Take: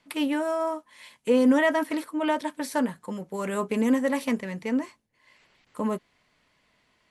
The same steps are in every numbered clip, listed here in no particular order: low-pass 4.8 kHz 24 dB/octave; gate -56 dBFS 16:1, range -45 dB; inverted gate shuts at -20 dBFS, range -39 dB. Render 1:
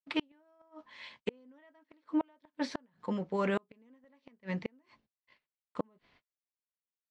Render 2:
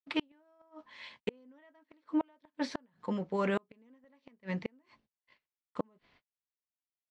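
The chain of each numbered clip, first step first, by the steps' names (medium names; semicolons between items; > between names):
gate > low-pass > inverted gate; low-pass > gate > inverted gate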